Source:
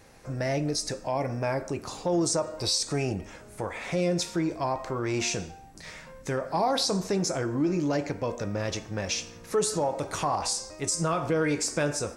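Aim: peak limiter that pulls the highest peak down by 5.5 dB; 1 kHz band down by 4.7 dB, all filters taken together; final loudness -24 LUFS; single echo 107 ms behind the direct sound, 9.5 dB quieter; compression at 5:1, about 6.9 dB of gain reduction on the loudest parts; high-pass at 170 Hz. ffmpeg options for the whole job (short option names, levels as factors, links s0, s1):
-af "highpass=170,equalizer=f=1000:t=o:g=-6.5,acompressor=threshold=0.0316:ratio=5,alimiter=level_in=1.12:limit=0.0631:level=0:latency=1,volume=0.891,aecho=1:1:107:0.335,volume=3.76"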